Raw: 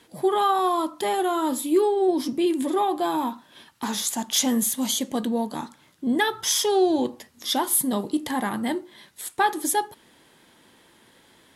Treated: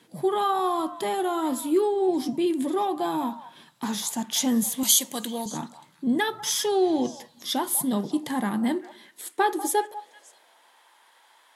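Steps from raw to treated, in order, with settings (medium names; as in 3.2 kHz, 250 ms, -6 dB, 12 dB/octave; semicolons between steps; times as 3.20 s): high-pass sweep 150 Hz -> 870 Hz, 8.25–10.80 s; 4.83–5.46 s: tilt EQ +4 dB/octave; repeats whose band climbs or falls 194 ms, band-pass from 830 Hz, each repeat 1.4 oct, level -11.5 dB; trim -3.5 dB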